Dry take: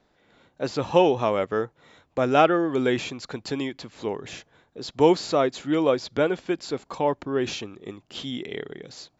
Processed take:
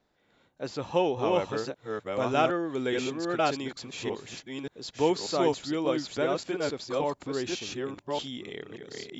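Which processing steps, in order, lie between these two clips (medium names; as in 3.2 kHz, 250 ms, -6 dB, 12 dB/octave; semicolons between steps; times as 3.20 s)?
chunks repeated in reverse 585 ms, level -1.5 dB; treble shelf 4.4 kHz +2.5 dB, from 1.39 s +8 dB; trim -7.5 dB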